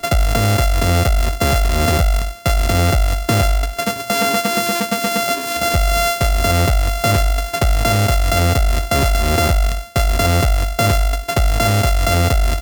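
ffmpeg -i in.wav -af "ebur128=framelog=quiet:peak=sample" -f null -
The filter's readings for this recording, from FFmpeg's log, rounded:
Integrated loudness:
  I:         -16.6 LUFS
  Threshold: -26.6 LUFS
Loudness range:
  LRA:         1.1 LU
  Threshold: -36.7 LUFS
  LRA low:   -17.3 LUFS
  LRA high:  -16.2 LUFS
Sample peak:
  Peak:       -8.0 dBFS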